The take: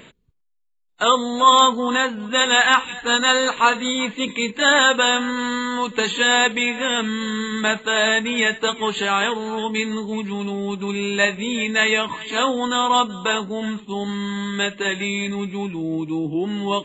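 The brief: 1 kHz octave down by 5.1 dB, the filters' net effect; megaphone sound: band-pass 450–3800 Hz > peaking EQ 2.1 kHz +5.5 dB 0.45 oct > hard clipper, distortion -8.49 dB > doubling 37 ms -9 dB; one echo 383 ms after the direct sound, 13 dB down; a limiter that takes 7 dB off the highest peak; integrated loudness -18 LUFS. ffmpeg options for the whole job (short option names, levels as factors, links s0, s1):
-filter_complex "[0:a]equalizer=f=1000:t=o:g=-6,alimiter=limit=0.299:level=0:latency=1,highpass=450,lowpass=3800,equalizer=f=2100:t=o:w=0.45:g=5.5,aecho=1:1:383:0.224,asoftclip=type=hard:threshold=0.0794,asplit=2[s0][s1];[s1]adelay=37,volume=0.355[s2];[s0][s2]amix=inputs=2:normalize=0,volume=2.37"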